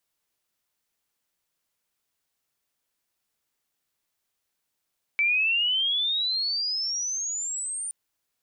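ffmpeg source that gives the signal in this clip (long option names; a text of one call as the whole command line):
ffmpeg -f lavfi -i "aevalsrc='pow(10,(-19.5-10*t/2.72)/20)*sin(2*PI*2300*2.72/log(9200/2300)*(exp(log(9200/2300)*t/2.72)-1))':duration=2.72:sample_rate=44100" out.wav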